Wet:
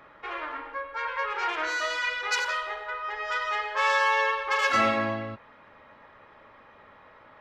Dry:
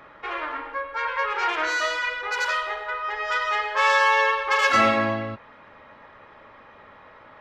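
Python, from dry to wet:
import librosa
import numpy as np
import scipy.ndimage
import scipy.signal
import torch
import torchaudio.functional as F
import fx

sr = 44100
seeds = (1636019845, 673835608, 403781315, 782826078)

y = fx.peak_eq(x, sr, hz=6700.0, db=fx.line((1.89, 2.5), (2.39, 13.5)), octaves=3.0, at=(1.89, 2.39), fade=0.02)
y = F.gain(torch.from_numpy(y), -4.5).numpy()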